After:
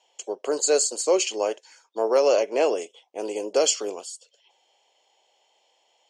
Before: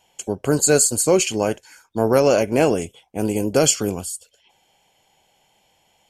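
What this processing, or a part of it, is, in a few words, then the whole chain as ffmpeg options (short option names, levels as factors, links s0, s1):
phone speaker on a table: -filter_complex "[0:a]highpass=f=410:w=0.5412,highpass=f=410:w=1.3066,equalizer=f=780:t=q:w=4:g=-3,equalizer=f=1500:t=q:w=4:g=-9,equalizer=f=2300:t=q:w=4:g=-5,lowpass=f=6800:w=0.5412,lowpass=f=6800:w=1.3066,asettb=1/sr,asplit=3[s0][s1][s2];[s0]atrim=end=2.314[s3];[s1]atrim=start=2.31:end=2.76,asetpts=PTS-STARTPTS,afade=t=in:d=0.004:c=qsin,afade=t=out:st=0.446:d=0.004:c=qsin,lowpass=7800[s4];[s2]atrim=start=2.756[s5];[s3][s4]acrossfade=d=0.004:c1=hsin:c2=qsin[s6];[s6][s5]acrossfade=d=0.004:c1=qsin:c2=hsin,volume=0.841"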